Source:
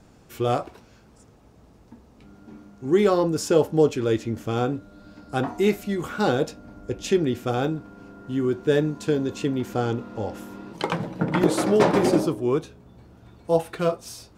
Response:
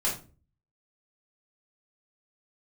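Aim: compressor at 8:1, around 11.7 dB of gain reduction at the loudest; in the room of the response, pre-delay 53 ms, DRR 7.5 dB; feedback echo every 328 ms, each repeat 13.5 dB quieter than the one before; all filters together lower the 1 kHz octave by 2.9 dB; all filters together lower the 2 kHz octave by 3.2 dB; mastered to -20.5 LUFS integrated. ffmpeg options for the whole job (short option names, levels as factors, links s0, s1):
-filter_complex "[0:a]equalizer=f=1000:t=o:g=-3.5,equalizer=f=2000:t=o:g=-3,acompressor=threshold=0.0501:ratio=8,aecho=1:1:328|656:0.211|0.0444,asplit=2[s0][s1];[1:a]atrim=start_sample=2205,adelay=53[s2];[s1][s2]afir=irnorm=-1:irlink=0,volume=0.168[s3];[s0][s3]amix=inputs=2:normalize=0,volume=3.55"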